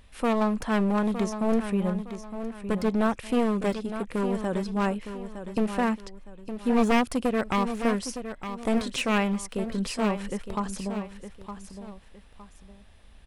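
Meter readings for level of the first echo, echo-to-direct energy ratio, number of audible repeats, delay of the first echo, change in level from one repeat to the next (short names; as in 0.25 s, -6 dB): -10.0 dB, -9.5 dB, 2, 0.912 s, -10.0 dB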